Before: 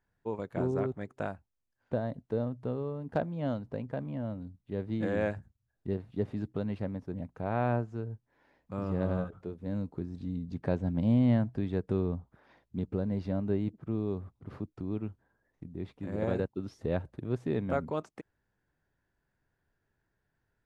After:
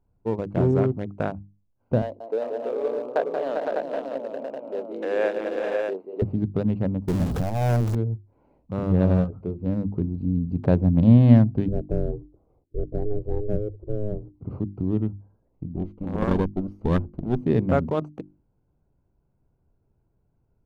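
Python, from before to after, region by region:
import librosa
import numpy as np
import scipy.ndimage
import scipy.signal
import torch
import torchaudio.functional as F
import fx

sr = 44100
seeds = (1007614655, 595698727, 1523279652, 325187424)

y = fx.chain(x, sr, fx.highpass(hz=410.0, slope=24),
    fx.echo_multitap(ms=(181, 210, 398, 461, 507, 600), db=(-6.5, -12.0, -5.5, -11.5, -5.0, -4.5)), at=(2.02, 6.22))
y = fx.chain(y, sr, fx.zero_step(step_db=-31.5),
    fx.notch(hz=2900.0, q=7.0),
    fx.transformer_sat(knee_hz=260.0), at=(7.08, 7.95))
y = fx.chain(y, sr, fx.bandpass_q(hz=220.0, q=1.0),
    fx.ring_mod(carrier_hz=210.0), at=(11.68, 14.34))
y = fx.chain(y, sr, fx.lower_of_two(delay_ms=0.6),
    fx.peak_eq(hz=110.0, db=-14.5, octaves=0.37), at=(15.76, 17.43))
y = fx.wiener(y, sr, points=25)
y = fx.low_shelf(y, sr, hz=290.0, db=7.5)
y = fx.hum_notches(y, sr, base_hz=50, count=7)
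y = y * 10.0 ** (7.0 / 20.0)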